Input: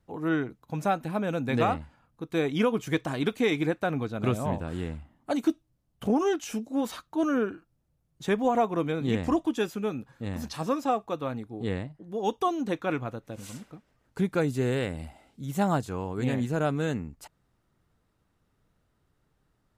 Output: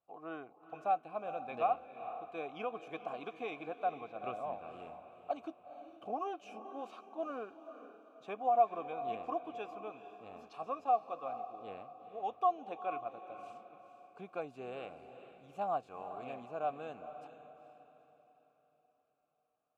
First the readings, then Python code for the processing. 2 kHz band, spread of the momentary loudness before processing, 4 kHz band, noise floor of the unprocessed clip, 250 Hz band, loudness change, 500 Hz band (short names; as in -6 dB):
-15.0 dB, 11 LU, under -15 dB, -73 dBFS, -22.0 dB, -10.0 dB, -10.5 dB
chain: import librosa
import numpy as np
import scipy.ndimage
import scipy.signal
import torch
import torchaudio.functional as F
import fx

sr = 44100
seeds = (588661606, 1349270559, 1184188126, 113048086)

y = fx.vowel_filter(x, sr, vowel='a')
y = fx.echo_diffused(y, sr, ms=454, feedback_pct=42, wet_db=-11.0)